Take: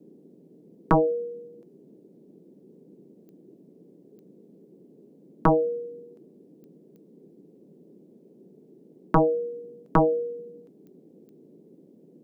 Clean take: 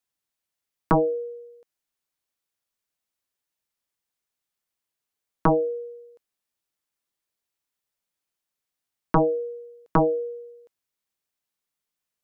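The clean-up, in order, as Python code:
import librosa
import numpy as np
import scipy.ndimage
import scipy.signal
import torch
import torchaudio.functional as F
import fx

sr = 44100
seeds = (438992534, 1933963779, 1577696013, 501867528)

y = fx.fix_declick_ar(x, sr, threshold=10.0)
y = fx.noise_reduce(y, sr, print_start_s=11.63, print_end_s=12.13, reduce_db=30.0)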